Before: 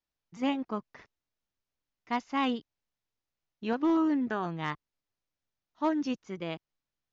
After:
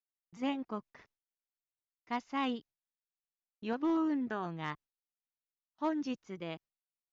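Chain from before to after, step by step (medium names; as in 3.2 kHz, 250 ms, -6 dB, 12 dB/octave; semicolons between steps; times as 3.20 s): gate with hold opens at -54 dBFS; trim -5 dB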